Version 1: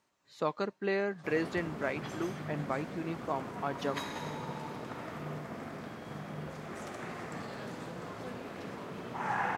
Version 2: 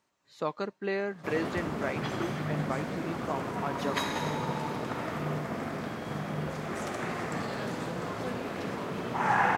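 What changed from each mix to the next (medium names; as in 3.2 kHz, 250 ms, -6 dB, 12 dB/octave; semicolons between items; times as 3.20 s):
background +7.5 dB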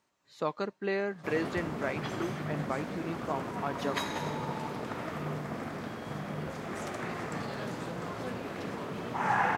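background: send -8.5 dB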